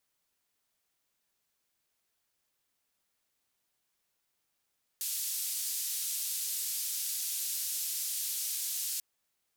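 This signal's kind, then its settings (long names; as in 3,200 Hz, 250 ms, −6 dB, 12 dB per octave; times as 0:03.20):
band-limited noise 4,700–15,000 Hz, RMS −35 dBFS 3.99 s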